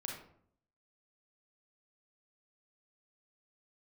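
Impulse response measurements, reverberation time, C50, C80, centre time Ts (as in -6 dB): 0.65 s, 2.5 dB, 7.5 dB, 40 ms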